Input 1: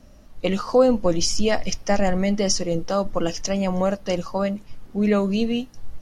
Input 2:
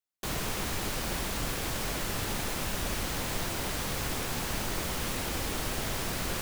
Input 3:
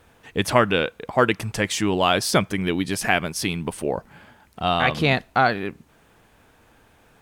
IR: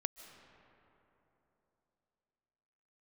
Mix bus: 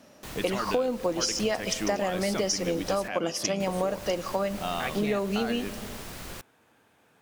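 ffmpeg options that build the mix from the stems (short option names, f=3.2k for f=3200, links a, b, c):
-filter_complex "[0:a]highpass=260,volume=-1dB,asplit=2[a][b];[b]volume=-7.5dB[c];[1:a]volume=-7.5dB,asplit=3[d][e][f];[d]atrim=end=3.08,asetpts=PTS-STARTPTS,afade=t=out:st=3.076:d=0.004:c=hsin[g];[e]atrim=start=3.08:end=3.6,asetpts=PTS-STARTPTS,volume=0[h];[f]atrim=start=3.6,asetpts=PTS-STARTPTS,afade=t=in:d=0.004:c=hsin[i];[g][h][i]concat=n=3:v=0:a=1[j];[2:a]highpass=140,alimiter=limit=-11dB:level=0:latency=1,acontrast=50,volume=-12.5dB[k];[3:a]atrim=start_sample=2205[l];[c][l]afir=irnorm=-1:irlink=0[m];[a][j][k][m]amix=inputs=4:normalize=0,acompressor=threshold=-24dB:ratio=6"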